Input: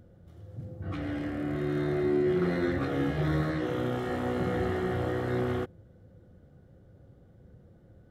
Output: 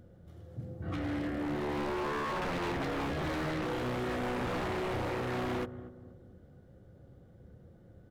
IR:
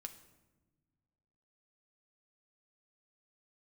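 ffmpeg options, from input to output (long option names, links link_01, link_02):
-filter_complex "[0:a]bandreject=frequency=50:width_type=h:width=6,bandreject=frequency=100:width_type=h:width=6,bandreject=frequency=150:width_type=h:width=6,asplit=2[link_01][link_02];[link_02]adelay=238,lowpass=frequency=960:poles=1,volume=-15dB,asplit=2[link_03][link_04];[link_04]adelay=238,lowpass=frequency=960:poles=1,volume=0.43,asplit=2[link_05][link_06];[link_06]adelay=238,lowpass=frequency=960:poles=1,volume=0.43,asplit=2[link_07][link_08];[link_08]adelay=238,lowpass=frequency=960:poles=1,volume=0.43[link_09];[link_01][link_03][link_05][link_07][link_09]amix=inputs=5:normalize=0,aeval=exprs='0.0355*(abs(mod(val(0)/0.0355+3,4)-2)-1)':channel_layout=same"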